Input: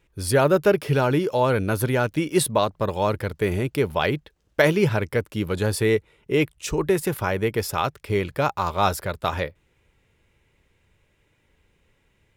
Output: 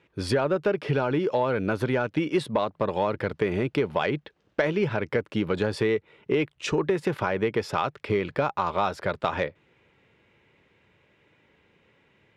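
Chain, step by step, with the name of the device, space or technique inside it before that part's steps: AM radio (band-pass 150–3500 Hz; compression, threshold -26 dBFS, peak gain reduction 13 dB; saturation -15.5 dBFS, distortion -24 dB); trim +5.5 dB

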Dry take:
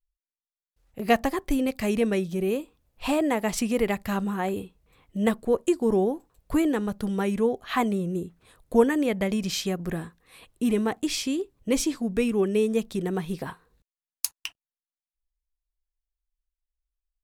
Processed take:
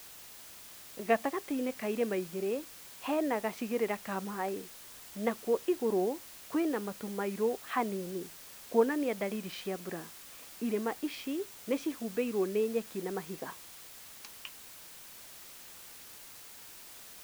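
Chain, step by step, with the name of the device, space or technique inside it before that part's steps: wax cylinder (band-pass 280–2400 Hz; wow and flutter; white noise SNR 15 dB); trim -5.5 dB

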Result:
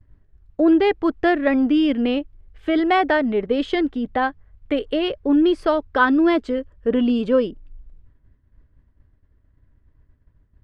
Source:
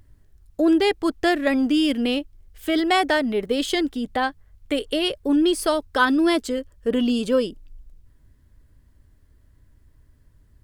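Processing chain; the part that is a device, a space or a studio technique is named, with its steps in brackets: hearing-loss simulation (low-pass 2.2 kHz 12 dB/octave; expander -48 dBFS); trim +2.5 dB

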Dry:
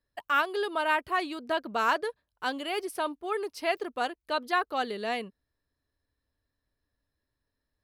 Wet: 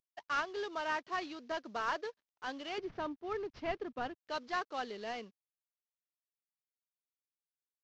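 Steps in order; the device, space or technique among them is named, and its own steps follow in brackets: early wireless headset (high-pass 180 Hz 24 dB/octave; CVSD coder 32 kbps); 2.78–4.25 s: tone controls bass +15 dB, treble -11 dB; trim -8.5 dB

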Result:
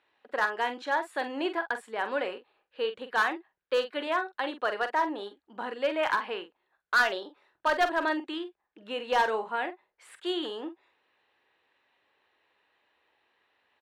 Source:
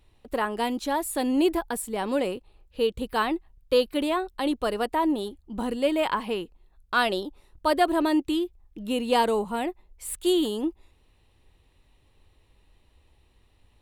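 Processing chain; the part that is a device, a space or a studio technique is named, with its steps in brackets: megaphone (band-pass 540–3200 Hz; peaking EQ 1.6 kHz +9.5 dB 0.48 oct; hard clipper -17 dBFS, distortion -13 dB; doubling 45 ms -10 dB); trim -1.5 dB

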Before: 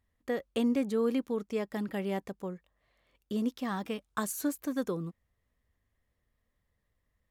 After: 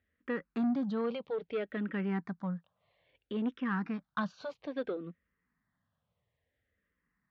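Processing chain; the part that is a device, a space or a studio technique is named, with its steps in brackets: 3.57–4.41 s: steep low-pass 6 kHz 36 dB/octave; barber-pole phaser into a guitar amplifier (barber-pole phaser -0.6 Hz; saturation -28.5 dBFS, distortion -15 dB; cabinet simulation 96–3800 Hz, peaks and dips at 170 Hz +6 dB, 360 Hz -4 dB, 1.5 kHz +6 dB); trim +2.5 dB

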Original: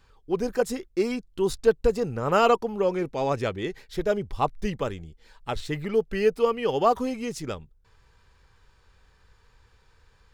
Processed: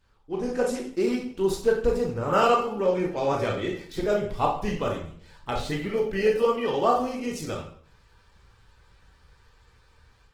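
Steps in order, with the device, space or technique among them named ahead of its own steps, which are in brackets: speakerphone in a meeting room (reverberation RT60 0.55 s, pre-delay 15 ms, DRR -1 dB; level rider gain up to 6 dB; trim -7 dB; Opus 16 kbps 48 kHz)

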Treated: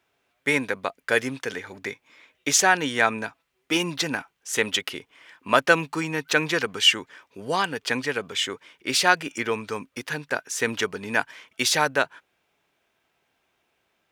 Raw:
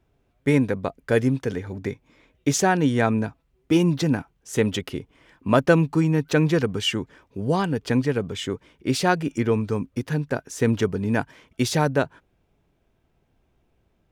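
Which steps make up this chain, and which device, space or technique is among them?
filter by subtraction (in parallel: low-pass 2 kHz 12 dB/octave + polarity flip); on the sum: trim +5.5 dB

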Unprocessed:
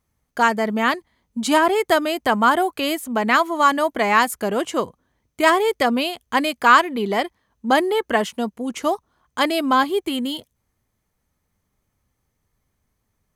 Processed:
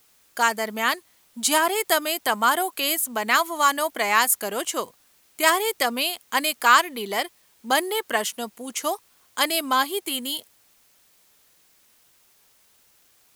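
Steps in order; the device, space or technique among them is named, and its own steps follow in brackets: turntable without a phono preamp (RIAA curve recording; white noise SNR 35 dB); trim -4 dB

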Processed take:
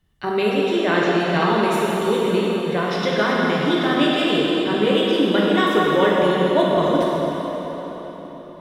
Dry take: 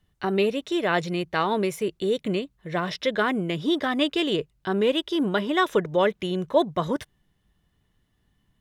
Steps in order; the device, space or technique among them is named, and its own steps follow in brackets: 0.55–1.20 s: low-pass 7.2 kHz 12 dB/octave; cathedral (reverberation RT60 4.7 s, pre-delay 7 ms, DRR -5.5 dB)

